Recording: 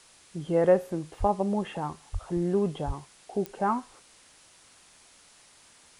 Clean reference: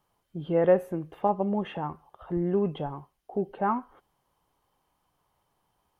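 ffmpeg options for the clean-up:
-filter_complex "[0:a]adeclick=t=4,asplit=3[s0][s1][s2];[s0]afade=t=out:st=1.19:d=0.02[s3];[s1]highpass=f=140:w=0.5412,highpass=f=140:w=1.3066,afade=t=in:st=1.19:d=0.02,afade=t=out:st=1.31:d=0.02[s4];[s2]afade=t=in:st=1.31:d=0.02[s5];[s3][s4][s5]amix=inputs=3:normalize=0,asplit=3[s6][s7][s8];[s6]afade=t=out:st=2.12:d=0.02[s9];[s7]highpass=f=140:w=0.5412,highpass=f=140:w=1.3066,afade=t=in:st=2.12:d=0.02,afade=t=out:st=2.24:d=0.02[s10];[s8]afade=t=in:st=2.24:d=0.02[s11];[s9][s10][s11]amix=inputs=3:normalize=0,asplit=3[s12][s13][s14];[s12]afade=t=out:st=2.86:d=0.02[s15];[s13]highpass=f=140:w=0.5412,highpass=f=140:w=1.3066,afade=t=in:st=2.86:d=0.02,afade=t=out:st=2.98:d=0.02[s16];[s14]afade=t=in:st=2.98:d=0.02[s17];[s15][s16][s17]amix=inputs=3:normalize=0,afwtdn=0.002"

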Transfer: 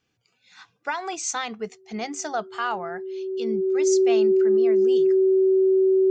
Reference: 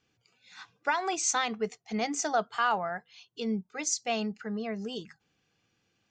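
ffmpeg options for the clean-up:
-af "bandreject=f=380:w=30"

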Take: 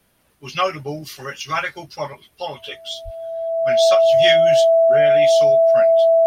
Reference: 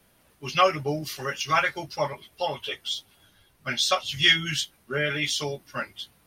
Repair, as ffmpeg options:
-filter_complex "[0:a]bandreject=f=660:w=30,asplit=3[s0][s1][s2];[s0]afade=t=out:st=3.04:d=0.02[s3];[s1]highpass=f=140:w=0.5412,highpass=f=140:w=1.3066,afade=t=in:st=3.04:d=0.02,afade=t=out:st=3.16:d=0.02[s4];[s2]afade=t=in:st=3.16:d=0.02[s5];[s3][s4][s5]amix=inputs=3:normalize=0"

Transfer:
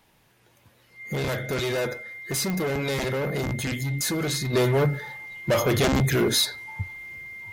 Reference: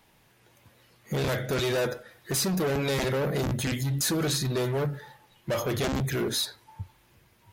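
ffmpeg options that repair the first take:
-af "adeclick=t=4,bandreject=f=2100:w=30,asetnsamples=n=441:p=0,asendcmd='4.53 volume volume -6.5dB',volume=1"

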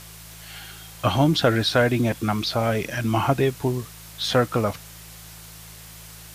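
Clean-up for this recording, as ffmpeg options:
-af "adeclick=t=4,bandreject=f=54.5:t=h:w=4,bandreject=f=109:t=h:w=4,bandreject=f=163.5:t=h:w=4,afwtdn=0.0071"

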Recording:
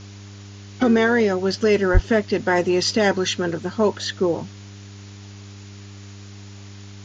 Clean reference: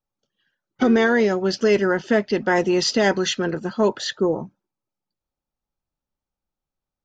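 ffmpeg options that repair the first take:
-filter_complex "[0:a]bandreject=f=100.2:t=h:w=4,bandreject=f=200.4:t=h:w=4,bandreject=f=300.6:t=h:w=4,bandreject=f=400.8:t=h:w=4,asplit=3[s0][s1][s2];[s0]afade=t=out:st=1.93:d=0.02[s3];[s1]highpass=f=140:w=0.5412,highpass=f=140:w=1.3066,afade=t=in:st=1.93:d=0.02,afade=t=out:st=2.05:d=0.02[s4];[s2]afade=t=in:st=2.05:d=0.02[s5];[s3][s4][s5]amix=inputs=3:normalize=0,afwtdn=0.0063"

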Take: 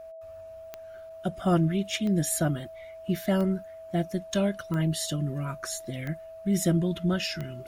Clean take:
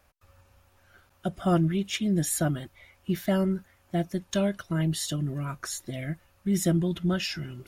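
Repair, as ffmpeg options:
-af "adeclick=t=4,bandreject=f=650:w=30"

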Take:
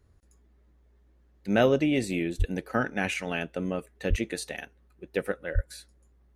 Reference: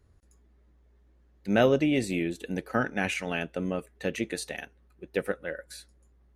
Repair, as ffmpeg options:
-filter_complex "[0:a]asplit=3[s0][s1][s2];[s0]afade=t=out:st=2.38:d=0.02[s3];[s1]highpass=f=140:w=0.5412,highpass=f=140:w=1.3066,afade=t=in:st=2.38:d=0.02,afade=t=out:st=2.5:d=0.02[s4];[s2]afade=t=in:st=2.5:d=0.02[s5];[s3][s4][s5]amix=inputs=3:normalize=0,asplit=3[s6][s7][s8];[s6]afade=t=out:st=4.09:d=0.02[s9];[s7]highpass=f=140:w=0.5412,highpass=f=140:w=1.3066,afade=t=in:st=4.09:d=0.02,afade=t=out:st=4.21:d=0.02[s10];[s8]afade=t=in:st=4.21:d=0.02[s11];[s9][s10][s11]amix=inputs=3:normalize=0,asplit=3[s12][s13][s14];[s12]afade=t=out:st=5.54:d=0.02[s15];[s13]highpass=f=140:w=0.5412,highpass=f=140:w=1.3066,afade=t=in:st=5.54:d=0.02,afade=t=out:st=5.66:d=0.02[s16];[s14]afade=t=in:st=5.66:d=0.02[s17];[s15][s16][s17]amix=inputs=3:normalize=0"

